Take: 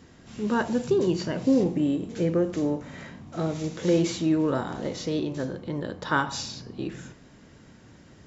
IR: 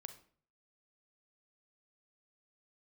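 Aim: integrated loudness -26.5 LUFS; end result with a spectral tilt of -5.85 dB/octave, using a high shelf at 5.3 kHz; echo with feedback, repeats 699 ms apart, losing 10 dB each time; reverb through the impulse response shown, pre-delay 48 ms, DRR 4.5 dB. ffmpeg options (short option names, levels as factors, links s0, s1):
-filter_complex "[0:a]highshelf=f=5300:g=-3,aecho=1:1:699|1398|2097|2796:0.316|0.101|0.0324|0.0104,asplit=2[s0][s1];[1:a]atrim=start_sample=2205,adelay=48[s2];[s1][s2]afir=irnorm=-1:irlink=0,volume=1.12[s3];[s0][s3]amix=inputs=2:normalize=0,volume=0.891"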